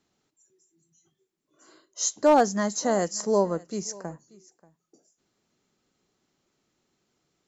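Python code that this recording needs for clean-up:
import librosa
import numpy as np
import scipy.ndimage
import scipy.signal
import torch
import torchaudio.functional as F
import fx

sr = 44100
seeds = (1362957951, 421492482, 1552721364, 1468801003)

y = fx.fix_declip(x, sr, threshold_db=-9.5)
y = fx.fix_echo_inverse(y, sr, delay_ms=584, level_db=-22.5)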